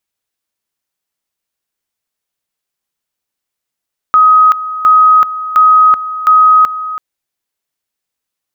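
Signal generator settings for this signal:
tone at two levels in turn 1,260 Hz −3 dBFS, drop 14 dB, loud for 0.38 s, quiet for 0.33 s, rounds 4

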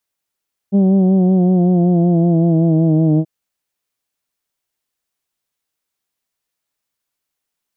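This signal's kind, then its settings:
vowel from formants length 2.53 s, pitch 195 Hz, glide −4 semitones, vibrato depth 0.45 semitones, F1 260 Hz, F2 680 Hz, F3 3,200 Hz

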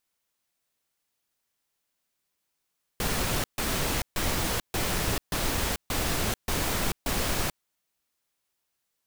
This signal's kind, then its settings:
noise bursts pink, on 0.44 s, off 0.14 s, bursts 8, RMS −27.5 dBFS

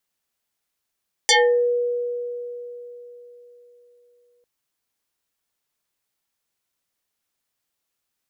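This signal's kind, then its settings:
two-operator FM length 3.15 s, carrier 484 Hz, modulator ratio 2.74, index 6.4, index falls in 0.37 s exponential, decay 3.90 s, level −11.5 dB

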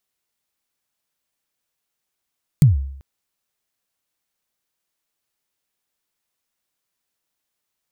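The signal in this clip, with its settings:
synth kick length 0.39 s, from 160 Hz, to 68 Hz, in 145 ms, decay 0.69 s, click on, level −5 dB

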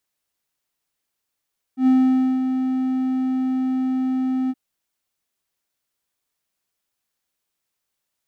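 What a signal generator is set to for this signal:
note with an ADSR envelope triangle 259 Hz, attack 99 ms, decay 529 ms, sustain −7.5 dB, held 2.73 s, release 40 ms −9.5 dBFS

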